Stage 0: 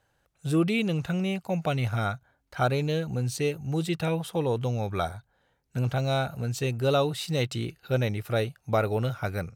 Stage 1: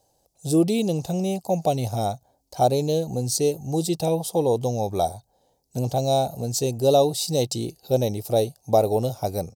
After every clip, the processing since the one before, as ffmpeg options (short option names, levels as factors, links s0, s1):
-af "firequalizer=gain_entry='entry(130,0);entry(260,5);entry(770,9);entry(1400,-18);entry(4800,12)':delay=0.05:min_phase=1"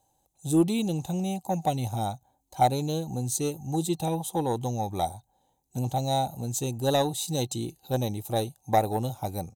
-af "aeval=exprs='0.473*(cos(1*acos(clip(val(0)/0.473,-1,1)))-cos(1*PI/2))+0.0531*(cos(3*acos(clip(val(0)/0.473,-1,1)))-cos(3*PI/2))':c=same,superequalizer=7b=0.447:8b=0.501:9b=1.41:14b=0.282"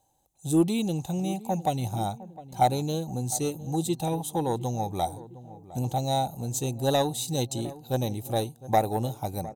-filter_complex "[0:a]asplit=2[s0][s1];[s1]adelay=708,lowpass=f=1000:p=1,volume=0.158,asplit=2[s2][s3];[s3]adelay=708,lowpass=f=1000:p=1,volume=0.53,asplit=2[s4][s5];[s5]adelay=708,lowpass=f=1000:p=1,volume=0.53,asplit=2[s6][s7];[s7]adelay=708,lowpass=f=1000:p=1,volume=0.53,asplit=2[s8][s9];[s9]adelay=708,lowpass=f=1000:p=1,volume=0.53[s10];[s0][s2][s4][s6][s8][s10]amix=inputs=6:normalize=0"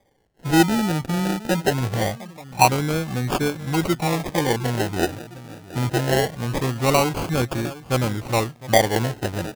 -af "acrusher=samples=32:mix=1:aa=0.000001:lfo=1:lforange=19.2:lforate=0.23,volume=2"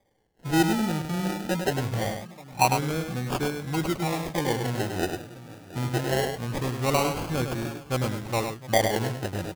-af "aecho=1:1:102:0.473,volume=0.501"